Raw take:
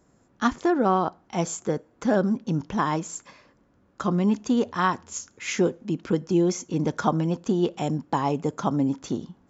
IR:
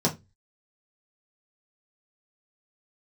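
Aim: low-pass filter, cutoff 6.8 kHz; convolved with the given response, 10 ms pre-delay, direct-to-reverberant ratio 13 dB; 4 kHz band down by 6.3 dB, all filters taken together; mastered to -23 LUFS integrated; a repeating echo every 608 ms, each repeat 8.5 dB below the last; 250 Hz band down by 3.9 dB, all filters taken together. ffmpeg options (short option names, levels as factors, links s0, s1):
-filter_complex "[0:a]lowpass=6800,equalizer=f=250:t=o:g=-5.5,equalizer=f=4000:t=o:g=-8.5,aecho=1:1:608|1216|1824|2432:0.376|0.143|0.0543|0.0206,asplit=2[s0][s1];[1:a]atrim=start_sample=2205,adelay=10[s2];[s1][s2]afir=irnorm=-1:irlink=0,volume=0.0596[s3];[s0][s3]amix=inputs=2:normalize=0,volume=1.58"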